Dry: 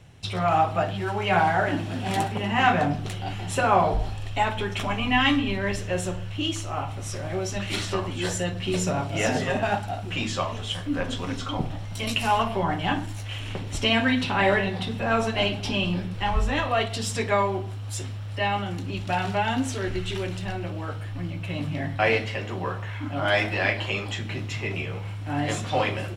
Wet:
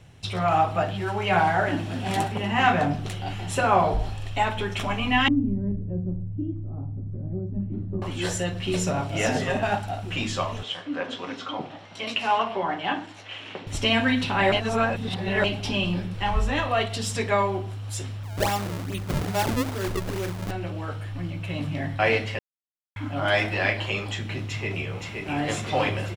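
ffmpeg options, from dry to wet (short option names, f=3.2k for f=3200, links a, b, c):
-filter_complex "[0:a]asettb=1/sr,asplit=3[a][b][c];[a]atrim=end=5.284[d];[b]atrim=start=5.28:end=8.02,asetpts=PTS-STARTPTS,afade=t=in:d=0.004:c=qsin,afade=t=out:st=2.736:d=0.004:c=qsin,lowpass=f=230:t=q:w=1.7[e];[c]atrim=start=8.016[f];[d][e]acrossfade=d=0.004:c1=hsin:c2=qsin[g];[g][f]acrossfade=d=0.004:c1=qsin:c2=hsin,asettb=1/sr,asplit=3[h][i][j];[h]atrim=end=10.634[k];[i]atrim=start=10.63:end=13.67,asetpts=PTS-STARTPTS,afade=t=in:d=0.004:c=qsin,afade=t=out:st=3.036:d=0.004:c=qsin,highpass=300,lowpass=4.4k[l];[j]atrim=start=13.666[m];[k][l]acrossfade=d=0.004:c1=hsin:c2=qsin[n];[n][m]acrossfade=d=0.004:c1=qsin:c2=hsin,asettb=1/sr,asplit=3[o][p][q];[o]atrim=end=18.234[r];[p]atrim=start=18.23:end=20.51,asetpts=PTS-STARTPTS,afade=t=in:d=0.004:c=qsin,afade=t=out:st=2.276:d=0.004:c=qsin,acrusher=samples=33:mix=1:aa=0.000001:lfo=1:lforange=52.8:lforate=2.4[s];[q]atrim=start=20.506[t];[r][s]acrossfade=d=0.004:c1=hsin:c2=qsin[u];[u][t]acrossfade=d=0.004:c1=qsin:c2=hsin,asplit=2[v][w];[w]afade=t=in:st=24.46:d=0.01,afade=t=out:st=25.37:d=0.01,aecho=0:1:520|1040|1560|2080|2600|3120|3640|4160|4680|5200:0.668344|0.434424|0.282375|0.183544|0.119304|0.0775473|0.0504058|0.0327637|0.0212964|0.0138427[x];[v][x]amix=inputs=2:normalize=0,asplit=5[y][z][aa][ab][ac];[y]atrim=end=14.522[ad];[z]atrim=start=14.518:end=15.442,asetpts=PTS-STARTPTS,areverse[ae];[aa]atrim=start=15.438:end=22.39,asetpts=PTS-STARTPTS,afade=t=out:st=6.948:d=0.004:c=hsin[af];[ab]atrim=start=22.39:end=22.96,asetpts=PTS-STARTPTS,volume=0[ag];[ac]atrim=start=22.96,asetpts=PTS-STARTPTS,afade=t=in:d=0.004:c=hsin[ah];[ad][ae]acrossfade=d=0.004:c1=hsin:c2=hsin[ai];[af][ag][ah]concat=n=3:v=0:a=1[aj];[ai][aj]acrossfade=d=0.004:c1=hsin:c2=hsin"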